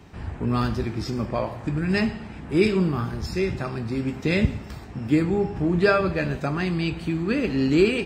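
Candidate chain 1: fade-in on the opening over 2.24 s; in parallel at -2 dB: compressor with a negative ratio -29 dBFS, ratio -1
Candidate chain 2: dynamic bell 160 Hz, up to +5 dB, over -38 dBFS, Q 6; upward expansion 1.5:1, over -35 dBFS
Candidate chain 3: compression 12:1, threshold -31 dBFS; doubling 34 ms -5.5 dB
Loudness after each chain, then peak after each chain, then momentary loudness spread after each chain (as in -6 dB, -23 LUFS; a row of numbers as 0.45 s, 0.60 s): -22.5 LUFS, -26.5 LUFS, -34.5 LUFS; -5.5 dBFS, -6.0 dBFS, -20.0 dBFS; 10 LU, 13 LU, 3 LU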